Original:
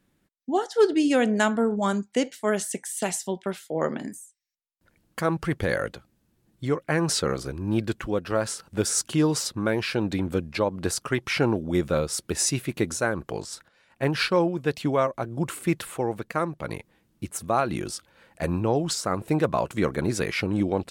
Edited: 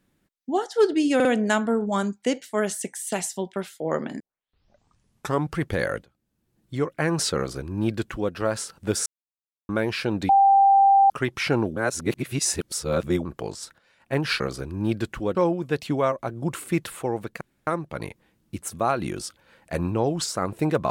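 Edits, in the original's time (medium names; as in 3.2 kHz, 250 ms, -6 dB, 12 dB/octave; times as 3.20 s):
1.15 s: stutter 0.05 s, 3 plays
4.10 s: tape start 1.34 s
5.94–6.73 s: fade in, from -18.5 dB
7.27–8.22 s: copy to 14.30 s
8.96–9.59 s: mute
10.19–11.00 s: bleep 788 Hz -12.5 dBFS
11.66–13.15 s: reverse
16.36 s: insert room tone 0.26 s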